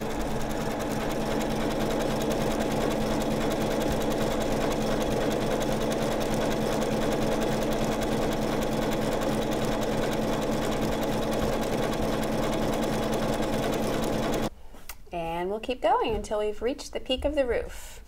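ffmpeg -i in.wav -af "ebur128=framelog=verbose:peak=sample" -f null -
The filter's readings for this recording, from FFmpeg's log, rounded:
Integrated loudness:
  I:         -28.0 LUFS
  Threshold: -38.1 LUFS
Loudness range:
  LRA:         1.8 LU
  Threshold: -48.0 LUFS
  LRA low:   -29.2 LUFS
  LRA high:  -27.4 LUFS
Sample peak:
  Peak:      -13.2 dBFS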